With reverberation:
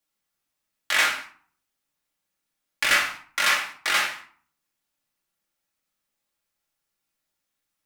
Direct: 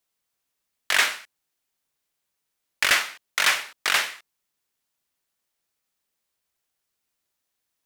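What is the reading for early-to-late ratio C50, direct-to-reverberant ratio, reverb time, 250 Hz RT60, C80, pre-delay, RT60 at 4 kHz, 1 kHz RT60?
7.5 dB, -2.5 dB, 0.50 s, 0.60 s, 12.5 dB, 4 ms, 0.30 s, 0.50 s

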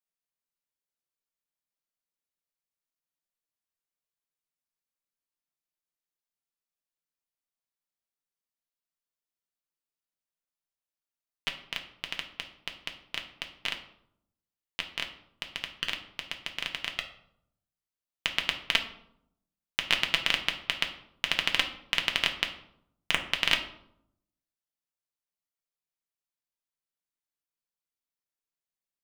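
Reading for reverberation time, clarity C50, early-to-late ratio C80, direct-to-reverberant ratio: 0.75 s, 10.0 dB, 13.5 dB, 3.0 dB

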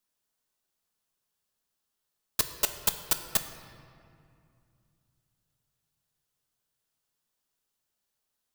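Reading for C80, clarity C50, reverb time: 10.0 dB, 9.5 dB, 2.4 s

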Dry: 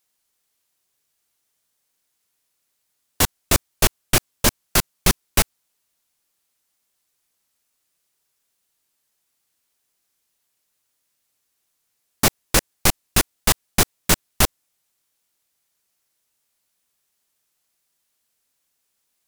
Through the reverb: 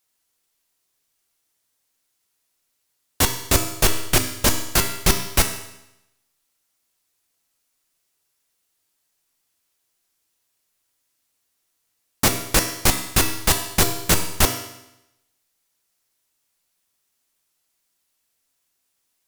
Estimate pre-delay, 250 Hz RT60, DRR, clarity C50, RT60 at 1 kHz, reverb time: 3 ms, 0.90 s, 4.5 dB, 8.5 dB, 0.85 s, 0.85 s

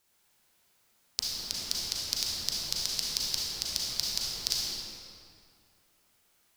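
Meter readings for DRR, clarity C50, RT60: -4.5 dB, -3.0 dB, 2.3 s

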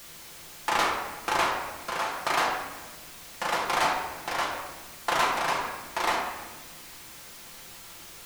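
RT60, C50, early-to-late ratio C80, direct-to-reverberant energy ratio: 1.3 s, 4.0 dB, 5.5 dB, -2.5 dB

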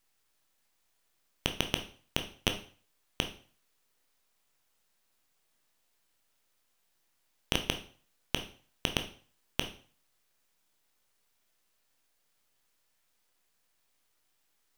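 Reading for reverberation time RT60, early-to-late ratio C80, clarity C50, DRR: 0.45 s, 16.0 dB, 11.0 dB, 5.5 dB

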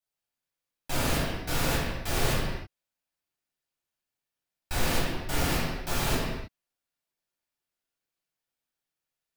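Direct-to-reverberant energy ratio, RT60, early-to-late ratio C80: -7.5 dB, no single decay rate, 1.5 dB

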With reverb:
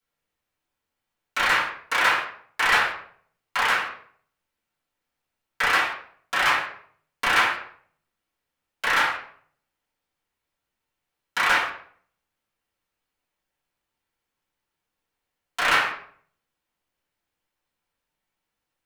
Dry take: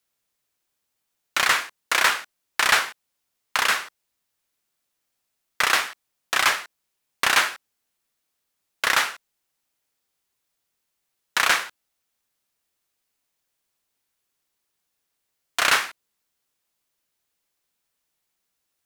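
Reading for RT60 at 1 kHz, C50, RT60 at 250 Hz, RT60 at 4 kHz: 0.55 s, 4.5 dB, 0.60 s, 0.40 s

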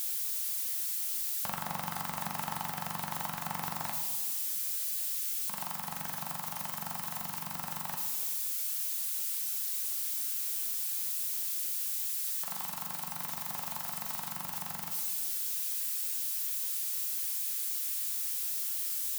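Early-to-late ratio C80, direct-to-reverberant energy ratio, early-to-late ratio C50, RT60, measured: 8.5 dB, 2.5 dB, 6.0 dB, 1.5 s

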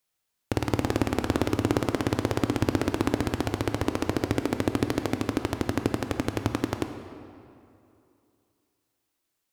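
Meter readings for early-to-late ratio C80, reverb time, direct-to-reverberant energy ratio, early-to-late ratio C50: 9.0 dB, 2.7 s, 7.0 dB, 8.0 dB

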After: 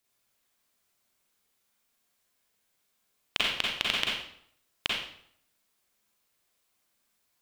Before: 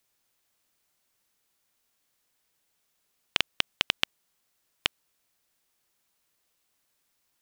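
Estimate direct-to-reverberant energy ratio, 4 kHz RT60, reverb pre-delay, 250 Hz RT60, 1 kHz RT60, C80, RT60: -4.0 dB, 0.55 s, 35 ms, 0.70 s, 0.65 s, 4.5 dB, 0.65 s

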